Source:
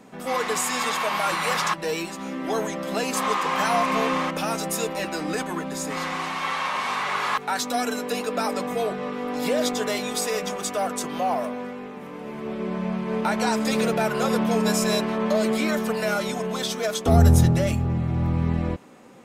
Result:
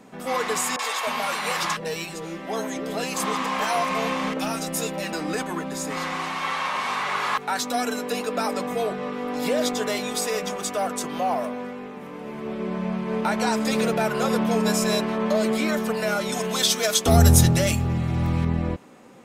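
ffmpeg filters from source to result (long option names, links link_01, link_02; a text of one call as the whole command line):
ffmpeg -i in.wav -filter_complex "[0:a]asettb=1/sr,asplit=3[link_01][link_02][link_03];[link_01]atrim=end=0.764[link_04];[link_02]atrim=start=0.76:end=5.13,asetpts=PTS-STARTPTS,afade=type=in:duration=0.004:curve=qsin,afade=type=out:start_time=4.366:duration=0.004:curve=qsin,acrossover=split=380|1300[link_05][link_06][link_07];[link_07]adelay=30[link_08];[link_05]adelay=310[link_09];[link_09][link_06][link_08]amix=inputs=3:normalize=0,atrim=end_sample=192717[link_10];[link_03]atrim=start=5.126[link_11];[link_04][link_10]acrossfade=duration=0.004:curve1=hsin:curve2=qsin[link_12];[link_12][link_11]acrossfade=duration=0.004:curve1=qsin:curve2=hsin,asettb=1/sr,asplit=3[link_13][link_14][link_15];[link_13]atrim=end=16.324[link_16];[link_14]atrim=start=16.32:end=18.45,asetpts=PTS-STARTPTS,afade=type=in:duration=0.004:curve=qsin,afade=type=out:start_time=2.126:duration=0.004:curve=qsin,highshelf=frequency=2100:gain=11[link_17];[link_15]atrim=start=18.446[link_18];[link_16][link_17]acrossfade=duration=0.004:curve1=hsin:curve2=qsin[link_19];[link_19][link_18]acrossfade=duration=0.004:curve1=qsin:curve2=hsin" out.wav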